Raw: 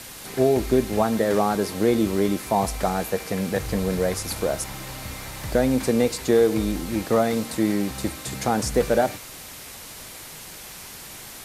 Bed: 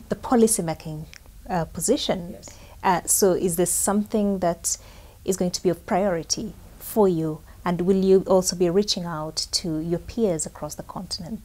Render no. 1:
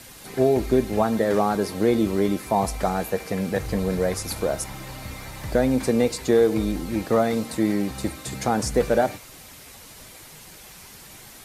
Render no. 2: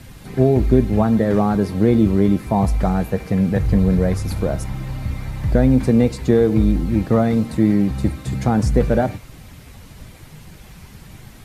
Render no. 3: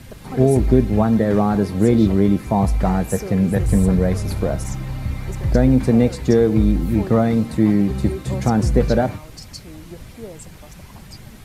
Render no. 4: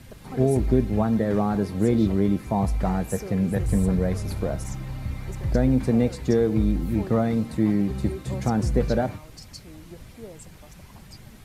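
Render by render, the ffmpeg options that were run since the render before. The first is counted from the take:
ffmpeg -i in.wav -af "afftdn=noise_reduction=6:noise_floor=-40" out.wav
ffmpeg -i in.wav -af "bass=frequency=250:gain=14,treble=frequency=4000:gain=-7" out.wav
ffmpeg -i in.wav -i bed.wav -filter_complex "[1:a]volume=-13.5dB[link_01];[0:a][link_01]amix=inputs=2:normalize=0" out.wav
ffmpeg -i in.wav -af "volume=-6dB" out.wav

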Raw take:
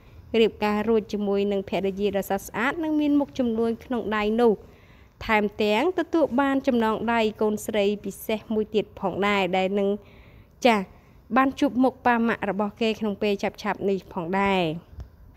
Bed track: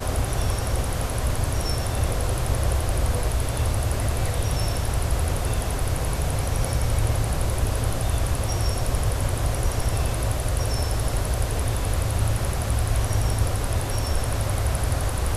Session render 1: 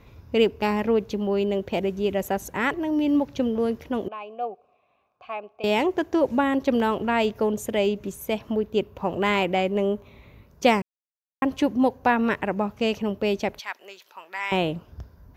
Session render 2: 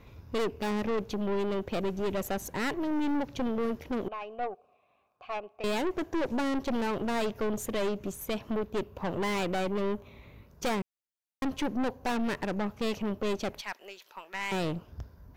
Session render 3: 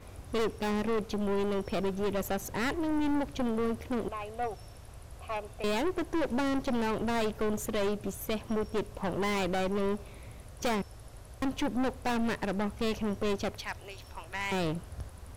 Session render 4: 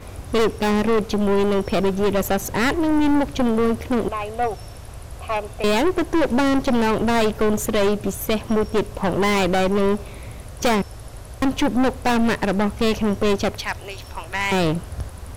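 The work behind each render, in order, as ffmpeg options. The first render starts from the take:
ffmpeg -i in.wav -filter_complex "[0:a]asettb=1/sr,asplit=3[link_01][link_02][link_03];[link_01]atrim=end=4.084[link_04];[link_02]atrim=start=4.08:end=5.64,asetpts=PTS-STARTPTS,afade=type=in:duration=0.004:curve=qsin,afade=type=out:start_time=1.556:duration=0.004:curve=qsin,asplit=3[link_05][link_06][link_07];[link_05]bandpass=frequency=730:width_type=q:width=8,volume=0dB[link_08];[link_06]bandpass=frequency=1090:width_type=q:width=8,volume=-6dB[link_09];[link_07]bandpass=frequency=2440:width_type=q:width=8,volume=-9dB[link_10];[link_08][link_09][link_10]amix=inputs=3:normalize=0[link_11];[link_03]atrim=start=5.636[link_12];[link_04][link_11]acrossfade=duration=0.004:curve1=hsin:curve2=qsin[link_13];[link_13][link_12]acrossfade=duration=0.004:curve1=qsin:curve2=hsin,asettb=1/sr,asplit=3[link_14][link_15][link_16];[link_14]atrim=end=13.594[link_17];[link_15]atrim=start=13.59:end=14.52,asetpts=PTS-STARTPTS,afade=type=in:duration=0.004:curve=qsin,afade=type=out:start_time=0.926:duration=0.004:curve=qsin,highpass=1500[link_18];[link_16]atrim=start=14.516[link_19];[link_17][link_18]acrossfade=duration=0.004:curve1=hsin:curve2=qsin[link_20];[link_20][link_19]acrossfade=duration=0.004:curve1=qsin:curve2=hsin,asplit=3[link_21][link_22][link_23];[link_21]atrim=end=10.82,asetpts=PTS-STARTPTS,afade=type=out:start_time=10.816:duration=0.004:curve=hsin[link_24];[link_22]atrim=start=10.82:end=11.42,asetpts=PTS-STARTPTS,volume=0[link_25];[link_23]atrim=start=11.42,asetpts=PTS-STARTPTS,afade=type=in:duration=0.004:curve=hsin[link_26];[link_24][link_25][link_26]concat=n=3:v=0:a=1" out.wav
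ffmpeg -i in.wav -af "aeval=exprs='(tanh(22.4*val(0)+0.5)-tanh(0.5))/22.4':channel_layout=same" out.wav
ffmpeg -i in.wav -i bed.wav -filter_complex "[1:a]volume=-24.5dB[link_01];[0:a][link_01]amix=inputs=2:normalize=0" out.wav
ffmpeg -i in.wav -af "volume=11.5dB" out.wav

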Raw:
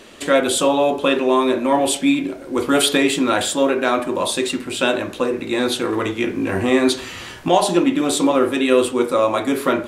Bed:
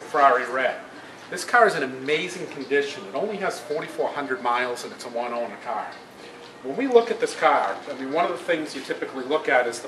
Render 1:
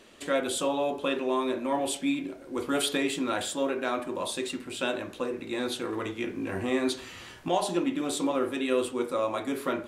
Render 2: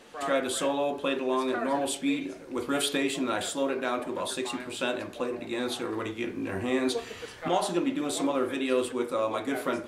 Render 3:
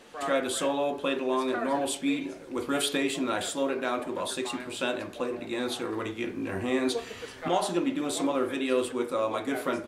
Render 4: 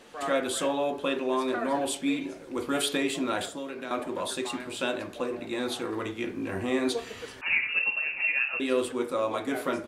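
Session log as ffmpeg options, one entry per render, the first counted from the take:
ffmpeg -i in.wav -af "volume=-11.5dB" out.wav
ffmpeg -i in.wav -i bed.wav -filter_complex "[1:a]volume=-18dB[link_01];[0:a][link_01]amix=inputs=2:normalize=0" out.wav
ffmpeg -i in.wav -filter_complex "[0:a]asplit=2[link_01][link_02];[link_02]adelay=536.4,volume=-27dB,highshelf=frequency=4000:gain=-12.1[link_03];[link_01][link_03]amix=inputs=2:normalize=0" out.wav
ffmpeg -i in.wav -filter_complex "[0:a]asettb=1/sr,asplit=3[link_01][link_02][link_03];[link_01]atrim=end=3.454[link_04];[link_02]atrim=start=3.45:end=3.91,asetpts=PTS-STARTPTS,afade=type=in:duration=0.004:curve=qsin,afade=type=out:start_time=0.456:duration=0.004:curve=qsin,acrossover=split=290|1600[link_05][link_06][link_07];[link_05]acompressor=threshold=-41dB:ratio=4[link_08];[link_06]acompressor=threshold=-40dB:ratio=4[link_09];[link_07]acompressor=threshold=-43dB:ratio=4[link_10];[link_08][link_09][link_10]amix=inputs=3:normalize=0[link_11];[link_03]atrim=start=3.906[link_12];[link_04][link_11]acrossfade=duration=0.004:curve1=hsin:curve2=qsin[link_13];[link_13][link_12]acrossfade=duration=0.004:curve1=qsin:curve2=hsin,asettb=1/sr,asplit=3[link_14][link_15][link_16];[link_14]atrim=end=7.414[link_17];[link_15]atrim=start=7.41:end=8.6,asetpts=PTS-STARTPTS,afade=type=in:duration=0.004:curve=qsin,afade=type=out:start_time=1.186:duration=0.004:curve=qsin,lowpass=frequency=2600:width_type=q:width=0.5098,lowpass=frequency=2600:width_type=q:width=0.6013,lowpass=frequency=2600:width_type=q:width=0.9,lowpass=frequency=2600:width_type=q:width=2.563,afreqshift=-3000[link_18];[link_16]atrim=start=8.596[link_19];[link_17][link_18]acrossfade=duration=0.004:curve1=hsin:curve2=qsin[link_20];[link_20][link_19]acrossfade=duration=0.004:curve1=qsin:curve2=hsin" out.wav

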